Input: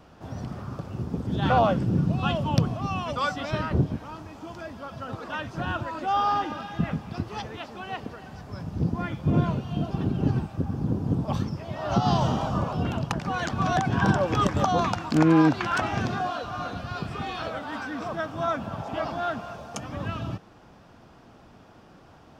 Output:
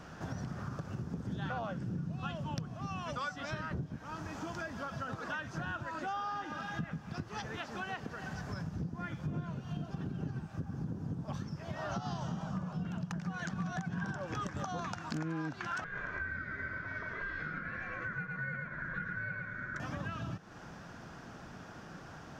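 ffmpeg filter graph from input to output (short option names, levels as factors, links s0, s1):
-filter_complex "[0:a]asettb=1/sr,asplit=3[s0][s1][s2];[s0]atrim=end=12.274[s3];[s1]atrim=start=12.27:end=14.05,asetpts=PTS-STARTPTS,afade=t=in:d=0.004:c=qsin,afade=t=out:st=1.776:d=0.004:c=qsin,equalizer=f=180:w=4.5:g=13.5,aeval=exprs='0.282*(abs(mod(val(0)/0.282+3,4)-2)-1)':c=same[s4];[s2]atrim=start=14.046[s5];[s3][s4]acrossfade=d=0.004:c1=hsin:c2=qsin[s6];[s6][s5]acrossfade=d=0.004:c1=qsin:c2=hsin,asettb=1/sr,asplit=3[s7][s8][s9];[s7]atrim=end=15.844[s10];[s8]atrim=start=15.84:end=19.8,asetpts=PTS-STARTPTS,afade=t=in:d=0.004:c=qsin,afade=t=out:st=3.956:d=0.004:c=qsin,bandpass=f=660:t=q:w=1.2,aeval=exprs='val(0)*sin(2*PI*810*n/s)':c=same,aecho=1:1:111:0.668,atrim=end_sample=174636[s11];[s9]atrim=start=19.796[s12];[s10][s11]acrossfade=d=0.004:c1=hsin:c2=qsin[s13];[s13][s12]acrossfade=d=0.004:c1=qsin:c2=hsin,equalizer=f=160:t=o:w=0.67:g=6,equalizer=f=1600:t=o:w=0.67:g=9,equalizer=f=6300:t=o:w=0.67:g=8,acompressor=threshold=0.0141:ratio=6"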